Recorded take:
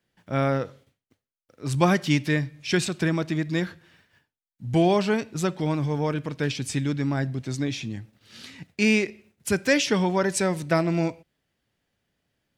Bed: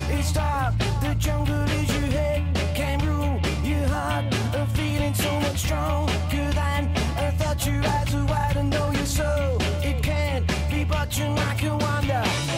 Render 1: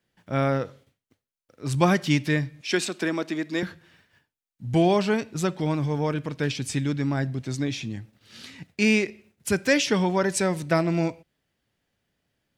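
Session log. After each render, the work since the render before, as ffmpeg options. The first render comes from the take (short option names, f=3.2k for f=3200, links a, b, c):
-filter_complex "[0:a]asettb=1/sr,asplit=3[a][b][c];[a]atrim=end=2.614[d];[b]atrim=start=2.61:end=3.63,asetpts=PTS-STARTPTS,afade=t=in:d=0.004:c=qsin,afade=t=out:st=1.016:d=0.004:c=qsin,highpass=f=230:w=0.5412,highpass=f=230:w=1.3066[e];[c]atrim=start=3.626[f];[d][e]acrossfade=d=0.004:c1=hsin:c2=qsin[g];[g][f]acrossfade=d=0.004:c1=qsin:c2=hsin"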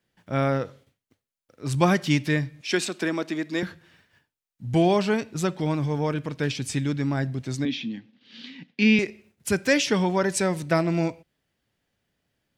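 -filter_complex "[0:a]asettb=1/sr,asplit=3[a][b][c];[a]atrim=end=7.654[d];[b]atrim=start=7.65:end=8.99,asetpts=PTS-STARTPTS,afade=t=in:d=0.004:c=qsin,afade=t=out:st=1.336:d=0.004:c=qsin,highpass=f=180:w=0.5412,highpass=f=180:w=1.3066,equalizer=f=250:t=q:w=4:g=10,equalizer=f=370:t=q:w=4:g=-7,equalizer=f=640:t=q:w=4:g=-9,equalizer=f=900:t=q:w=4:g=-3,equalizer=f=1.3k:t=q:w=4:g=-8,equalizer=f=3.2k:t=q:w=4:g=5,lowpass=f=4.6k:w=0.5412,lowpass=f=4.6k:w=1.3066[e];[c]atrim=start=8.986[f];[d][e]acrossfade=d=0.004:c1=hsin:c2=qsin[g];[g][f]acrossfade=d=0.004:c1=qsin:c2=hsin"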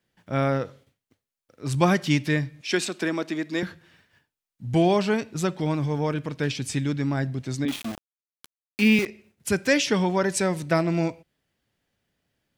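-filter_complex "[0:a]asettb=1/sr,asplit=3[a][b][c];[a]atrim=end=7.684[d];[b]atrim=start=7.68:end=9.06,asetpts=PTS-STARTPTS,afade=t=in:d=0.004:c=qsin,afade=t=out:st=1.376:d=0.004:c=qsin,aeval=exprs='val(0)*gte(abs(val(0)),0.0316)':c=same[e];[c]atrim=start=9.056[f];[d][e]acrossfade=d=0.004:c1=hsin:c2=qsin[g];[g][f]acrossfade=d=0.004:c1=qsin:c2=hsin"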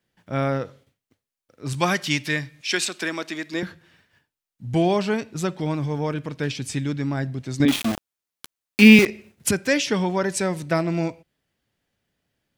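-filter_complex "[0:a]asettb=1/sr,asplit=3[a][b][c];[a]atrim=end=1.734[d];[b]atrim=start=1.73:end=3.54,asetpts=PTS-STARTPTS,afade=t=in:d=0.004:c=qsin,afade=t=out:st=1.806:d=0.004:c=qsin,tiltshelf=f=860:g=-5.5[e];[c]atrim=start=3.536[f];[d][e]acrossfade=d=0.004:c1=hsin:c2=qsin[g];[g][f]acrossfade=d=0.004:c1=qsin:c2=hsin,asplit=3[h][i][j];[h]atrim=end=7.602[k];[i]atrim=start=7.598:end=9.512,asetpts=PTS-STARTPTS,volume=8.5dB[l];[j]atrim=start=9.508[m];[k][l]acrossfade=d=0.004:c1=hsin:c2=hsin[n];[n][m]acrossfade=d=0.004:c1=hsin:c2=hsin"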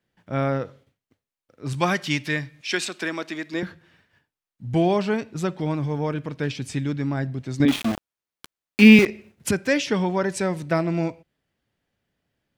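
-af "highshelf=f=4.1k:g=-7"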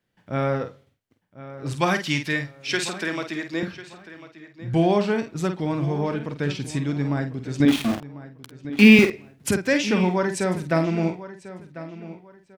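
-filter_complex "[0:a]asplit=2[a][b];[b]adelay=49,volume=-8dB[c];[a][c]amix=inputs=2:normalize=0,asplit=2[d][e];[e]adelay=1046,lowpass=f=3.4k:p=1,volume=-15dB,asplit=2[f][g];[g]adelay=1046,lowpass=f=3.4k:p=1,volume=0.28,asplit=2[h][i];[i]adelay=1046,lowpass=f=3.4k:p=1,volume=0.28[j];[d][f][h][j]amix=inputs=4:normalize=0"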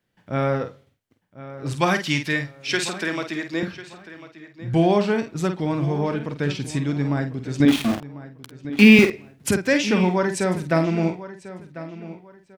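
-af "volume=1.5dB,alimiter=limit=-3dB:level=0:latency=1"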